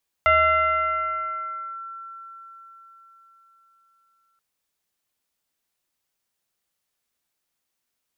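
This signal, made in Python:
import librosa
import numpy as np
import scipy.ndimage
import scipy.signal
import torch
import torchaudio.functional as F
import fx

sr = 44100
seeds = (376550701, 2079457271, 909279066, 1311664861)

y = fx.fm2(sr, length_s=4.13, level_db=-13.0, carrier_hz=1350.0, ratio=0.53, index=1.1, index_s=1.53, decay_s=4.68, shape='linear')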